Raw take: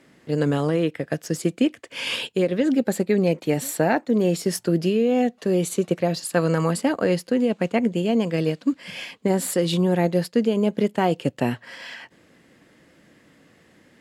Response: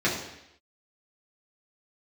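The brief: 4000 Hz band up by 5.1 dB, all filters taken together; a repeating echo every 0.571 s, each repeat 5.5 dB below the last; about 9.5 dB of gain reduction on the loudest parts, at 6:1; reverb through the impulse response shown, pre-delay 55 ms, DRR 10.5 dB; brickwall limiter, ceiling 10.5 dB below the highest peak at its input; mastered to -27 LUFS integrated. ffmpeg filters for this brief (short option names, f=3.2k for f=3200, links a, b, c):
-filter_complex "[0:a]equalizer=f=4k:t=o:g=7,acompressor=threshold=-26dB:ratio=6,alimiter=limit=-22.5dB:level=0:latency=1,aecho=1:1:571|1142|1713|2284|2855|3426|3997:0.531|0.281|0.149|0.079|0.0419|0.0222|0.0118,asplit=2[a][b];[1:a]atrim=start_sample=2205,adelay=55[c];[b][c]afir=irnorm=-1:irlink=0,volume=-24.5dB[d];[a][d]amix=inputs=2:normalize=0,volume=4dB"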